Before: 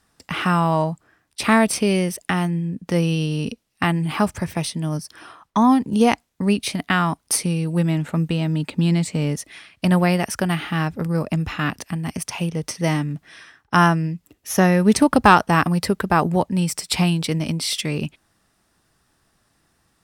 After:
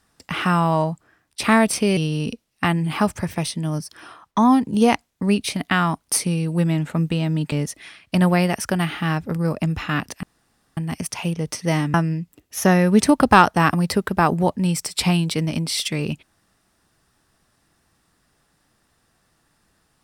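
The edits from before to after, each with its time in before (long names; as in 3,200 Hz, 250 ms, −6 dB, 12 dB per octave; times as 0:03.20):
0:01.97–0:03.16: remove
0:08.71–0:09.22: remove
0:11.93: splice in room tone 0.54 s
0:13.10–0:13.87: remove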